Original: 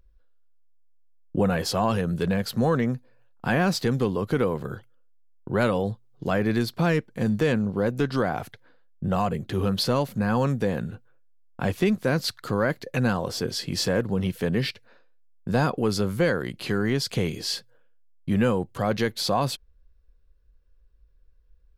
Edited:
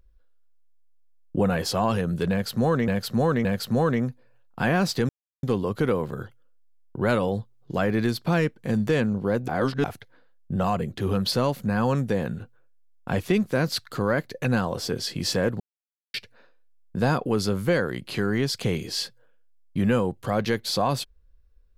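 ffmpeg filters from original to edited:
ffmpeg -i in.wav -filter_complex "[0:a]asplit=8[link_01][link_02][link_03][link_04][link_05][link_06][link_07][link_08];[link_01]atrim=end=2.882[link_09];[link_02]atrim=start=2.308:end=2.882[link_10];[link_03]atrim=start=2.308:end=3.95,asetpts=PTS-STARTPTS,afade=type=out:start_time=1.638:duration=0.004:curve=hsin,apad=pad_dur=0.34[link_11];[link_04]atrim=start=3.95:end=8.002,asetpts=PTS-STARTPTS,afade=type=in:duration=0.004:curve=hsin[link_12];[link_05]atrim=start=7.998:end=8.362,asetpts=PTS-STARTPTS,areverse[link_13];[link_06]atrim=start=8.358:end=14.12,asetpts=PTS-STARTPTS,afade=type=out:start_time=5.758:duration=0.004:curve=hsin[link_14];[link_07]atrim=start=14.12:end=14.66,asetpts=PTS-STARTPTS,volume=0[link_15];[link_08]atrim=start=14.66,asetpts=PTS-STARTPTS,afade=type=in:duration=0.004:curve=hsin[link_16];[link_09][link_10]acrossfade=duration=0.004:curve1=hsin:curve2=hsin[link_17];[link_11][link_12]concat=n=2:v=0:a=1[link_18];[link_17][link_18]acrossfade=duration=0.004:curve1=hsin:curve2=hsin[link_19];[link_19][link_13]acrossfade=duration=0.004:curve1=hsin:curve2=hsin[link_20];[link_14][link_15][link_16]concat=n=3:v=0:a=1[link_21];[link_20][link_21]acrossfade=duration=0.004:curve1=hsin:curve2=hsin" out.wav

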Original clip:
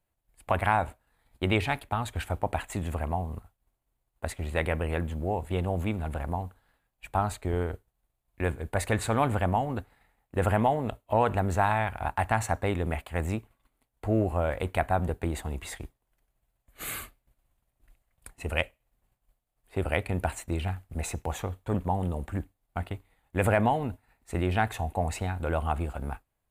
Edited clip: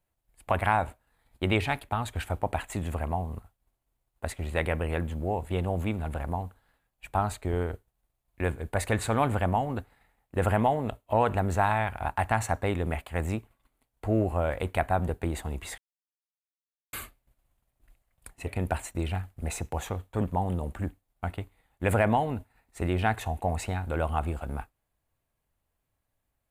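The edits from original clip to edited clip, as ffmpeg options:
ffmpeg -i in.wav -filter_complex "[0:a]asplit=4[link_01][link_02][link_03][link_04];[link_01]atrim=end=15.78,asetpts=PTS-STARTPTS,afade=type=out:start_time=15.776:duration=0.004:curve=hsin[link_05];[link_02]atrim=start=15.78:end=16.93,asetpts=PTS-STARTPTS,volume=0[link_06];[link_03]atrim=start=16.93:end=18.472,asetpts=PTS-STARTPTS,afade=type=in:duration=0.004:curve=hsin[link_07];[link_04]atrim=start=19.998[link_08];[link_05][link_06][link_07]concat=n=3:v=0:a=1[link_09];[link_09][link_08]acrossfade=duration=0.004:curve1=hsin:curve2=hsin" out.wav

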